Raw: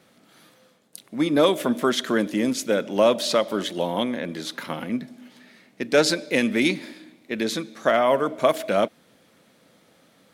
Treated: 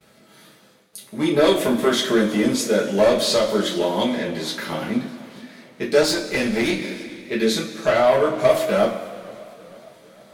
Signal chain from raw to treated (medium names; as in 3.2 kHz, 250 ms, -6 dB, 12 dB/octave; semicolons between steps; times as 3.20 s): gate with hold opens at -50 dBFS; in parallel at -11.5 dB: sine folder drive 9 dB, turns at -6 dBFS; on the sum: two-slope reverb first 0.27 s, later 2.2 s, from -18 dB, DRR -5 dB; 6.03–6.82 s: valve stage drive 5 dB, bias 0.55; modulated delay 456 ms, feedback 59%, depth 155 cents, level -22.5 dB; trim -8 dB